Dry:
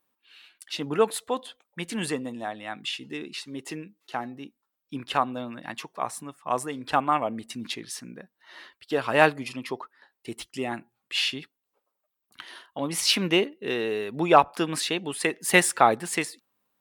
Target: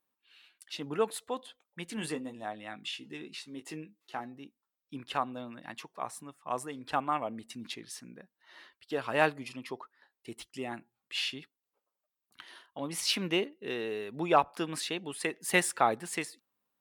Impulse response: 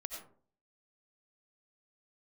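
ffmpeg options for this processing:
-filter_complex "[0:a]asettb=1/sr,asplit=3[link_01][link_02][link_03];[link_01]atrim=end=1.954[link_04];[link_02]atrim=start=1.95:end=4.2,asetpts=PTS-STARTPTS,afade=type=in:duration=0.004:curve=qsin,afade=type=out:start_time=2.246:duration=0.004:curve=qsin,asplit=2[link_05][link_06];[link_06]adelay=19,volume=-8dB[link_07];[link_05][link_07]amix=inputs=2:normalize=0,atrim=end_sample=99225[link_08];[link_03]atrim=start=4.196[link_09];[link_04][link_08]acrossfade=duration=0.004:curve1=hsin:curve2=qsin[link_10];[link_10][link_09]acrossfade=duration=0.004:curve1=qsin:curve2=hsin,volume=-7.5dB"

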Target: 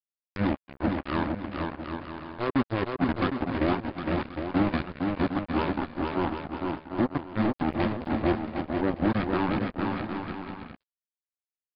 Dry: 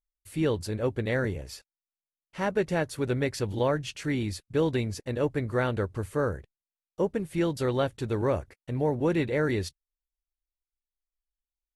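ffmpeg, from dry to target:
ffmpeg -i in.wav -filter_complex "[0:a]asuperstop=centerf=690:order=12:qfactor=7.2,equalizer=frequency=65:width_type=o:width=0.98:gain=-13,bandreject=frequency=50:width_type=h:width=6,bandreject=frequency=100:width_type=h:width=6,bandreject=frequency=150:width_type=h:width=6,bandreject=frequency=200:width_type=h:width=6,bandreject=frequency=250:width_type=h:width=6,bandreject=frequency=300:width_type=h:width=6,aresample=16000,acrusher=bits=3:mix=0:aa=0.5,aresample=44100,asetrate=27781,aresample=44100,atempo=1.5874,asplit=2[link_01][link_02];[link_02]aecho=0:1:460|759|953.4|1080|1162:0.631|0.398|0.251|0.158|0.1[link_03];[link_01][link_03]amix=inputs=2:normalize=0,acompressor=mode=upward:threshold=-31dB:ratio=2.5" out.wav

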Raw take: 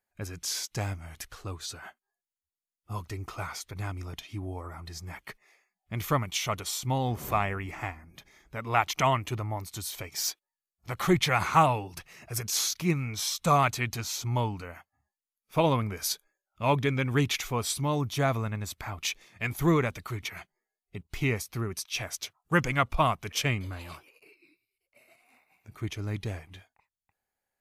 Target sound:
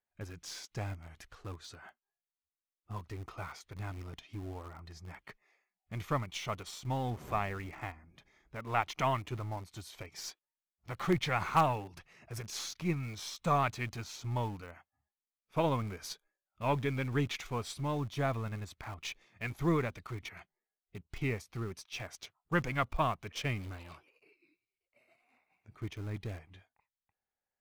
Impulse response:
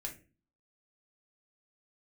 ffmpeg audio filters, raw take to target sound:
-filter_complex "[0:a]aemphasis=mode=reproduction:type=50fm,asplit=2[link_01][link_02];[link_02]acrusher=bits=3:dc=4:mix=0:aa=0.000001,volume=-11dB[link_03];[link_01][link_03]amix=inputs=2:normalize=0,volume=-7.5dB"

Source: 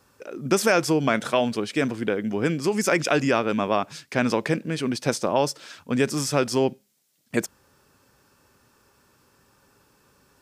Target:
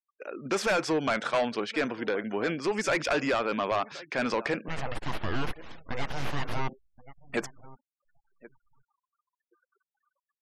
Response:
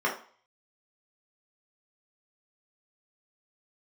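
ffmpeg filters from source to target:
-filter_complex "[0:a]highpass=frequency=890:poles=1,asettb=1/sr,asplit=3[link_01][link_02][link_03];[link_01]atrim=end=4.684[link_04];[link_02]atrim=start=4.68:end=6.69,asetpts=PTS-STARTPTS,afade=type=in:duration=0.004:curve=qsin,afade=type=out:start_time=2.006:duration=0.004:curve=qsin,aeval=exprs='abs(val(0))':channel_layout=same[link_05];[link_03]atrim=start=6.686[link_06];[link_04][link_05]acrossfade=duration=0.004:curve1=hsin:curve2=qsin[link_07];[link_07][link_06]acrossfade=duration=0.004:curve1=qsin:curve2=hsin,aemphasis=mode=reproduction:type=50fm,asplit=2[link_08][link_09];[link_09]adelay=1074,lowpass=frequency=1500:poles=1,volume=-22dB,asplit=2[link_10][link_11];[link_11]adelay=1074,lowpass=frequency=1500:poles=1,volume=0.17[link_12];[link_08][link_10][link_12]amix=inputs=3:normalize=0,volume=25.5dB,asoftclip=hard,volume=-25.5dB,afftfilt=real='re*gte(hypot(re,im),0.00282)':imag='im*gte(hypot(re,im),0.00282)':win_size=1024:overlap=0.75,highshelf=frequency=5700:gain=-8.5,volume=4dB"

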